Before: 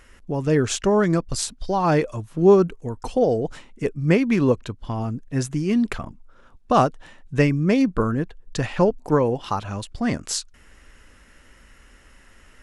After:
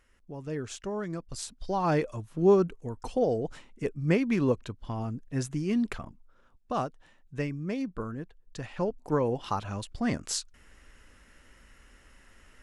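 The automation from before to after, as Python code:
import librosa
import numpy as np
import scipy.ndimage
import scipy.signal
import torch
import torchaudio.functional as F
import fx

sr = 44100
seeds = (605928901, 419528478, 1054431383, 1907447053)

y = fx.gain(x, sr, db=fx.line((1.18, -15.5), (1.73, -7.0), (5.82, -7.0), (6.85, -14.0), (8.64, -14.0), (9.38, -5.5)))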